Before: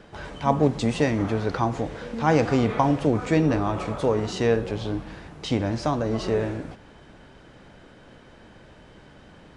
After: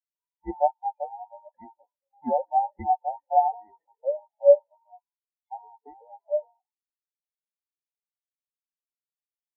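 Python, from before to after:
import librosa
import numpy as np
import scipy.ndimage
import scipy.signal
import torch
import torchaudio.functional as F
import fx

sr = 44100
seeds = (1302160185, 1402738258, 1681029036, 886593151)

y = fx.band_invert(x, sr, width_hz=1000)
y = fx.spectral_expand(y, sr, expansion=4.0)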